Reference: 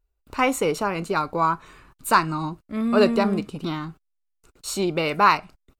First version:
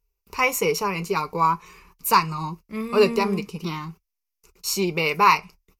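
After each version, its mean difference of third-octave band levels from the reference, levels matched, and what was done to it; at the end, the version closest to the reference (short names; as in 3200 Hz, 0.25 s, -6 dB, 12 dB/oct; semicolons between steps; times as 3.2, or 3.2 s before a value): 4.0 dB: high shelf 2700 Hz +10 dB; flange 0.47 Hz, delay 4.2 ms, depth 3.2 ms, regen -58%; ripple EQ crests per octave 0.81, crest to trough 11 dB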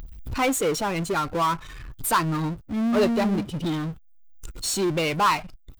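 5.5 dB: per-bin expansion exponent 1.5; upward compressor, threshold -31 dBFS; power-law curve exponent 0.5; gain -6.5 dB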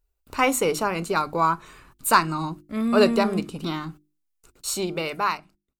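3.0 dB: ending faded out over 1.31 s; high shelf 5600 Hz +7 dB; notches 50/100/150/200/250/300/350 Hz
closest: third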